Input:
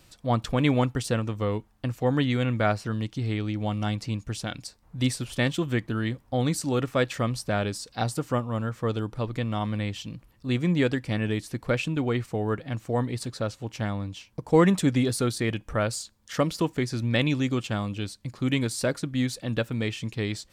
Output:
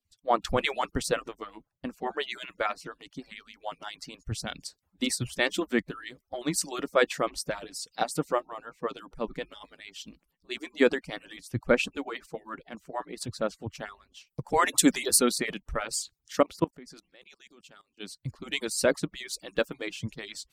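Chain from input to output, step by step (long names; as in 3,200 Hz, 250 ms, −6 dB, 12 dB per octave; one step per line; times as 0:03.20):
harmonic-percussive split with one part muted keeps percussive
0:14.26–0:15.17: high-shelf EQ 4,100 Hz → 6,600 Hz +9 dB
0:16.40–0:18.00: output level in coarse steps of 22 dB
multiband upward and downward expander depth 70%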